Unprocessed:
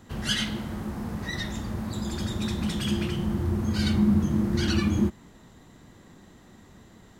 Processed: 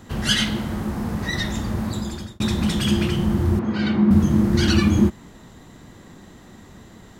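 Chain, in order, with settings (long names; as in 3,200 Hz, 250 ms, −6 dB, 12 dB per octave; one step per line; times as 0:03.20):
0:01.86–0:02.40: fade out
0:03.59–0:04.11: band-pass filter 190–2,500 Hz
level +7 dB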